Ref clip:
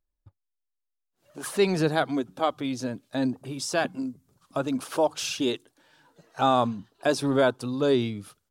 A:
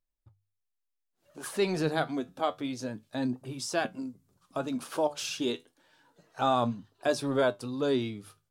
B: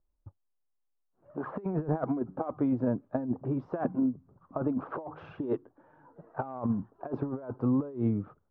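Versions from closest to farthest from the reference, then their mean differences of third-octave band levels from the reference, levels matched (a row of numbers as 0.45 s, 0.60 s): A, B; 1.0 dB, 11.5 dB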